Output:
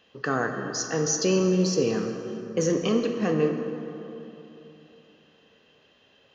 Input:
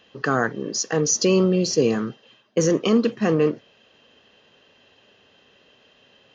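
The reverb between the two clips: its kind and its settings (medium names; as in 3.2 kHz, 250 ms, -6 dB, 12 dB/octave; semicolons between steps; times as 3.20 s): plate-style reverb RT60 3.3 s, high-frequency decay 0.5×, DRR 4 dB; trim -5.5 dB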